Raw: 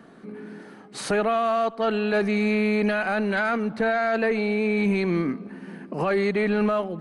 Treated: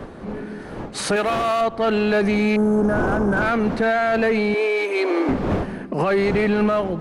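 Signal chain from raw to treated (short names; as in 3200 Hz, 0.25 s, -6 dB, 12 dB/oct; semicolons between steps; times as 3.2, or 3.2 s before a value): wind noise 510 Hz -32 dBFS; 2.56–3.42 Chebyshev band-stop 1600–5200 Hz, order 5; in parallel at -4 dB: hard clip -22 dBFS, distortion -11 dB; 4.54–5.29 on the sum: steep high-pass 280 Hz 72 dB/oct; limiter -15 dBFS, peak gain reduction 6.5 dB; 1.16–1.61 tilt +2.5 dB/oct; gain +2.5 dB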